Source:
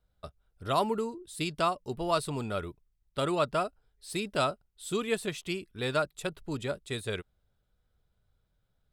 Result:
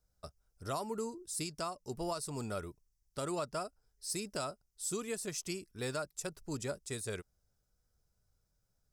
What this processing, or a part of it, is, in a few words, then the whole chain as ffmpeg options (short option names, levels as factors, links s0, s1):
over-bright horn tweeter: -af "highshelf=f=4400:t=q:w=3:g=8,alimiter=limit=0.0794:level=0:latency=1:release=296,volume=0.596"